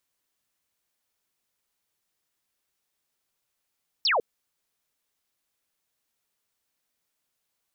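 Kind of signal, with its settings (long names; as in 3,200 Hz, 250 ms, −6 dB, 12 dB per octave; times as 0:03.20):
single falling chirp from 5,700 Hz, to 410 Hz, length 0.15 s sine, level −20 dB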